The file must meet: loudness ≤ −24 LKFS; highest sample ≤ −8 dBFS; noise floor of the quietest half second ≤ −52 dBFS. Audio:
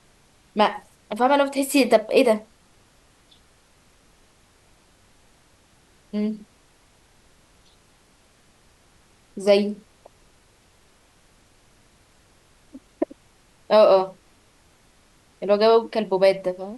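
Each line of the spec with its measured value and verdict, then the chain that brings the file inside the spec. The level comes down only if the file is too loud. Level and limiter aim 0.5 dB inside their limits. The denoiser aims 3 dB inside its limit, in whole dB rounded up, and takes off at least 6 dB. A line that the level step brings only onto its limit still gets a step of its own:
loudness −21.0 LKFS: out of spec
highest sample −4.0 dBFS: out of spec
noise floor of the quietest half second −58 dBFS: in spec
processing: level −3.5 dB
brickwall limiter −8.5 dBFS

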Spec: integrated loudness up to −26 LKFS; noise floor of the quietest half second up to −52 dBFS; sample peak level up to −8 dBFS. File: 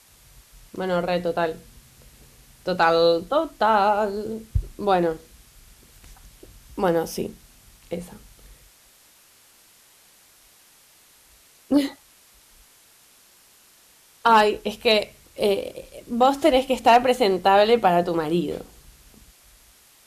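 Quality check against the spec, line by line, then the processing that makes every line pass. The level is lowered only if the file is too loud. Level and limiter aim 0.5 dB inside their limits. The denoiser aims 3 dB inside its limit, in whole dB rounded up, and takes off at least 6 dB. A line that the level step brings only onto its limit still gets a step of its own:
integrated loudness −21.5 LKFS: out of spec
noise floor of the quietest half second −55 dBFS: in spec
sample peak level −6.0 dBFS: out of spec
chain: level −5 dB

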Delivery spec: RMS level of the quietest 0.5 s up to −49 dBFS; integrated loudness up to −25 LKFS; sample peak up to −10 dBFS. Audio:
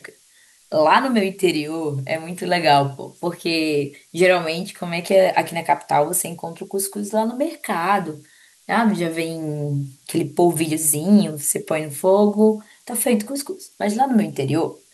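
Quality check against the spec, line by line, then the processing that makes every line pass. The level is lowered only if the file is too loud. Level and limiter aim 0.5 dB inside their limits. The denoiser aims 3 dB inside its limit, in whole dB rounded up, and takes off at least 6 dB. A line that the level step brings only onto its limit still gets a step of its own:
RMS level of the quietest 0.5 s −54 dBFS: in spec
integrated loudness −20.0 LKFS: out of spec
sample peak −3.0 dBFS: out of spec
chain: level −5.5 dB
brickwall limiter −10.5 dBFS

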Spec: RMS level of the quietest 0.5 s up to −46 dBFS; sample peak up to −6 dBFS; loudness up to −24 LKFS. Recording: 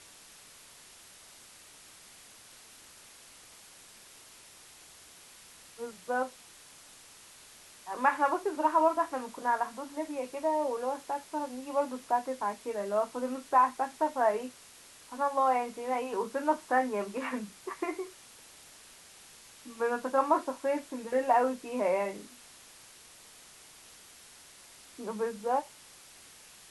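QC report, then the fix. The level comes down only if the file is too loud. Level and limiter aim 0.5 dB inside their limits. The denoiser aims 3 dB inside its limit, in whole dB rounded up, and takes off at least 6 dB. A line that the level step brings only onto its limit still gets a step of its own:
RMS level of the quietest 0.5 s −54 dBFS: in spec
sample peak −13.0 dBFS: in spec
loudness −31.0 LKFS: in spec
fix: no processing needed

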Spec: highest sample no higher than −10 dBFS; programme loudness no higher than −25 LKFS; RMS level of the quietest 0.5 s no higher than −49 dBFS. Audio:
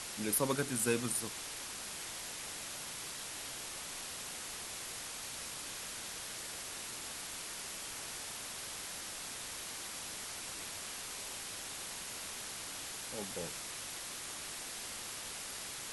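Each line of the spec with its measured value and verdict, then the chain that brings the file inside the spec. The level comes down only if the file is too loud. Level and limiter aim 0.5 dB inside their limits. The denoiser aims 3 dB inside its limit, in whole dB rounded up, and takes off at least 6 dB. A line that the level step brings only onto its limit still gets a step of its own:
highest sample −19.0 dBFS: in spec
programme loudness −39.5 LKFS: in spec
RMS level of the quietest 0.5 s −44 dBFS: out of spec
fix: broadband denoise 8 dB, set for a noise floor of −44 dBFS

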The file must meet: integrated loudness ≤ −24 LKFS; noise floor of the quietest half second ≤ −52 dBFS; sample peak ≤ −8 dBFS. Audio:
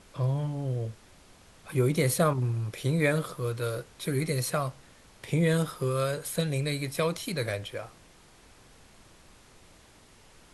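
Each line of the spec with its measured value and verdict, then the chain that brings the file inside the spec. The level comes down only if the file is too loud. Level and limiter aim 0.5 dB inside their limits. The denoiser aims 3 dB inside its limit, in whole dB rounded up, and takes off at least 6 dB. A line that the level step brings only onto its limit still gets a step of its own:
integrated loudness −29.5 LKFS: in spec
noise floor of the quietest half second −56 dBFS: in spec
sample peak −12.0 dBFS: in spec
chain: no processing needed

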